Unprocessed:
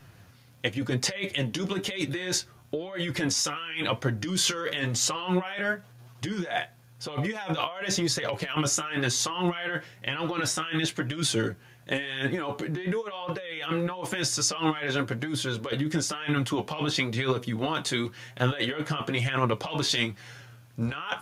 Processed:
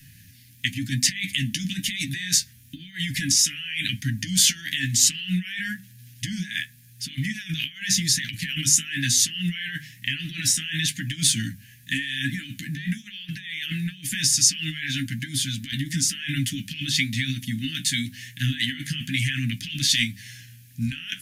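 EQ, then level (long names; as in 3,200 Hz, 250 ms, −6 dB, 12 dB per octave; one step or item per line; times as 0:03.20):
Chebyshev band-stop filter 270–1,700 Hz, order 5
high-shelf EQ 6,900 Hz +12 dB
mains-hum notches 50/100/150/200/250 Hz
+4.0 dB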